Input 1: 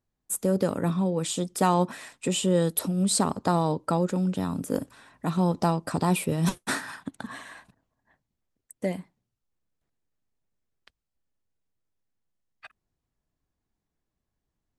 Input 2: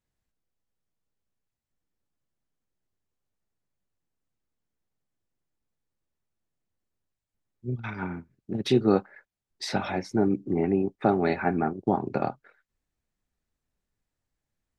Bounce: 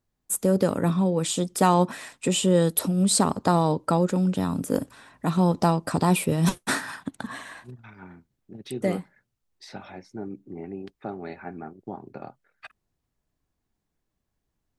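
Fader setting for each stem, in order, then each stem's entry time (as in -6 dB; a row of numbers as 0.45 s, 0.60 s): +3.0 dB, -12.0 dB; 0.00 s, 0.00 s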